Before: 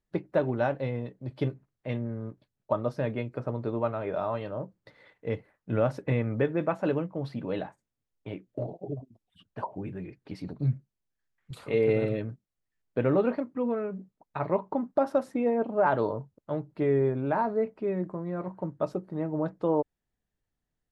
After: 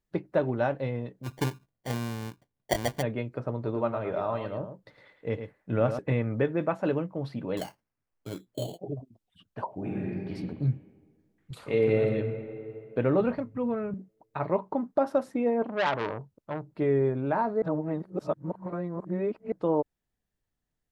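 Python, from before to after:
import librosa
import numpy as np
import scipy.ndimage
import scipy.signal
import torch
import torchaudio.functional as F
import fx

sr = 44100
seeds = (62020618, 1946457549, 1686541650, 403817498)

y = fx.sample_hold(x, sr, seeds[0], rate_hz=1300.0, jitter_pct=0, at=(1.23, 3.01), fade=0.02)
y = fx.echo_single(y, sr, ms=109, db=-8.5, at=(3.53, 5.99))
y = fx.sample_hold(y, sr, seeds[1], rate_hz=3700.0, jitter_pct=0, at=(7.57, 8.79))
y = fx.reverb_throw(y, sr, start_s=9.75, length_s=0.57, rt60_s=1.7, drr_db=-4.5)
y = fx.reverb_throw(y, sr, start_s=11.59, length_s=0.49, rt60_s=2.7, drr_db=5.0)
y = fx.low_shelf_res(y, sr, hz=190.0, db=12.5, q=1.5, at=(13.2, 13.94))
y = fx.transformer_sat(y, sr, knee_hz=1700.0, at=(15.62, 16.69))
y = fx.edit(y, sr, fx.reverse_span(start_s=17.62, length_s=1.9), tone=tone)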